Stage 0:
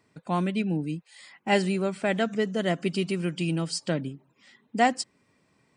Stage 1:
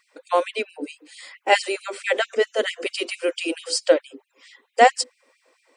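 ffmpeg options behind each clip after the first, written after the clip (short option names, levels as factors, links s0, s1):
-af "equalizer=f=520:t=o:w=0.21:g=13,bandreject=f=50:t=h:w=6,bandreject=f=100:t=h:w=6,bandreject=f=150:t=h:w=6,bandreject=f=200:t=h:w=6,bandreject=f=250:t=h:w=6,bandreject=f=300:t=h:w=6,bandreject=f=350:t=h:w=6,bandreject=f=400:t=h:w=6,bandreject=f=450:t=h:w=6,bandreject=f=500:t=h:w=6,afftfilt=real='re*gte(b*sr/1024,240*pow(2200/240,0.5+0.5*sin(2*PI*4.5*pts/sr)))':imag='im*gte(b*sr/1024,240*pow(2200/240,0.5+0.5*sin(2*PI*4.5*pts/sr)))':win_size=1024:overlap=0.75,volume=2.37"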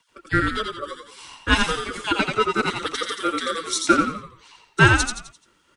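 -filter_complex "[0:a]aeval=exprs='val(0)*sin(2*PI*910*n/s)':c=same,asplit=6[s0][s1][s2][s3][s4][s5];[s1]adelay=86,afreqshift=-45,volume=0.631[s6];[s2]adelay=172,afreqshift=-90,volume=0.251[s7];[s3]adelay=258,afreqshift=-135,volume=0.101[s8];[s4]adelay=344,afreqshift=-180,volume=0.0403[s9];[s5]adelay=430,afreqshift=-225,volume=0.0162[s10];[s0][s6][s7][s8][s9][s10]amix=inputs=6:normalize=0,afreqshift=-44,volume=1.26"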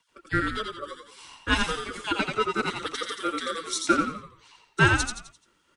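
-af "bandreject=f=60:t=h:w=6,bandreject=f=120:t=h:w=6,volume=0.562"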